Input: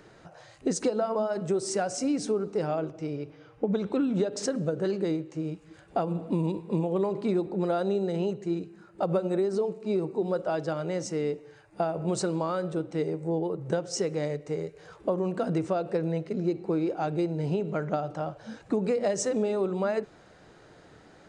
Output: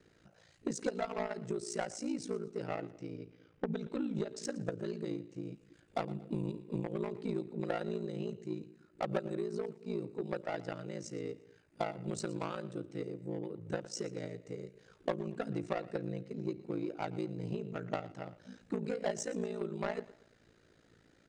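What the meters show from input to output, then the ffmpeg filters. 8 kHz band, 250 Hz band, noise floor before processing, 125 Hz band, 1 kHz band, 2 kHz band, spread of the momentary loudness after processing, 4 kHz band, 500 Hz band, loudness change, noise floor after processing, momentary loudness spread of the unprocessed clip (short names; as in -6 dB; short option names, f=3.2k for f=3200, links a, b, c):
-9.5 dB, -9.5 dB, -55 dBFS, -9.0 dB, -8.5 dB, -4.5 dB, 8 LU, -8.0 dB, -10.5 dB, -10.0 dB, -67 dBFS, 7 LU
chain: -filter_complex "[0:a]acrossover=split=570|1200[a][b][c];[b]acrusher=bits=4:mix=0:aa=0.5[d];[a][d][c]amix=inputs=3:normalize=0,aeval=exprs='0.224*(cos(1*acos(clip(val(0)/0.224,-1,1)))-cos(1*PI/2))+0.0355*(cos(3*acos(clip(val(0)/0.224,-1,1)))-cos(3*PI/2))':c=same,aecho=1:1:117|234|351:0.112|0.0404|0.0145,aeval=exprs='val(0)*sin(2*PI*28*n/s)':c=same,volume=-1.5dB"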